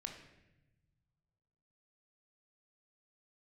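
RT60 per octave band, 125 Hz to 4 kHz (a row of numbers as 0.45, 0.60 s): 2.4, 1.7, 1.1, 0.85, 1.0, 0.75 s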